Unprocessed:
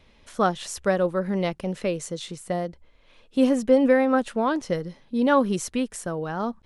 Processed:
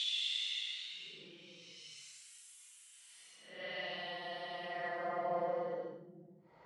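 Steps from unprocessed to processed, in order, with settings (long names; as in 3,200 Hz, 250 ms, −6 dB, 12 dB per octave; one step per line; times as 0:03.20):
extreme stretch with random phases 13×, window 0.05 s, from 0:02.22
band-pass filter sweep 3,000 Hz → 1,000 Hz, 0:04.58–0:05.28
level +2 dB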